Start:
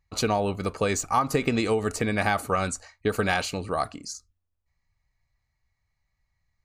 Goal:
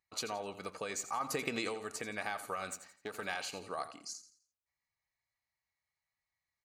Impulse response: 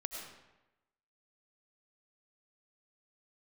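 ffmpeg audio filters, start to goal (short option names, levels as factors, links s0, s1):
-filter_complex "[0:a]asettb=1/sr,asplit=3[s0][s1][s2];[s0]atrim=end=2.714[s3];[s1]atrim=start=2.71:end=3.22,asetpts=PTS-STARTPTS,afade=t=in:d=0.004:c=qsin,afade=t=out:st=0.506:d=0.004:c=qsin,aeval=exprs='if(lt(val(0),0),0.447*val(0),val(0))':c=same[s4];[s2]atrim=start=3.216[s5];[s3][s4]acrossfade=d=0.004:c1=hsin:c2=qsin[s6];[s6][s5]acrossfade=d=0.004:c1=qsin:c2=hsin,acompressor=threshold=0.0562:ratio=4,highpass=f=620:p=1,asettb=1/sr,asplit=3[s7][s8][s9];[s7]atrim=end=1.204[s10];[s8]atrim=start=1.2:end=1.69,asetpts=PTS-STARTPTS,afade=t=in:d=0.004:c=qsin,afade=t=out:st=0.486:d=0.004:c=qsin,acontrast=34[s11];[s9]atrim=start=1.686[s12];[s10][s11]acrossfade=d=0.004:c1=hsin:c2=qsin[s13];[s13][s12]acrossfade=d=0.004:c1=qsin:c2=hsin,aecho=1:1:85|170|255|340:0.224|0.0806|0.029|0.0104,volume=0.422"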